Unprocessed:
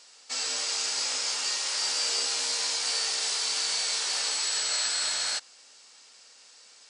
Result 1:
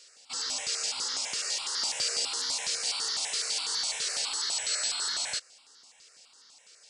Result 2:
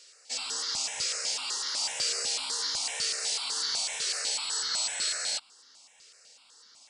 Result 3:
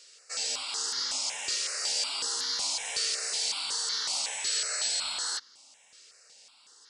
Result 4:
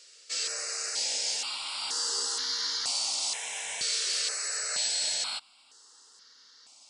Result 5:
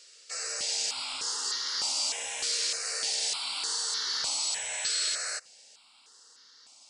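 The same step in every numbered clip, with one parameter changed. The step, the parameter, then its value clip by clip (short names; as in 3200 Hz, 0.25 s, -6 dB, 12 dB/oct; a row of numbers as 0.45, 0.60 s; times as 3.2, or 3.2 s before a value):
step phaser, rate: 12, 8, 5.4, 2.1, 3.3 Hz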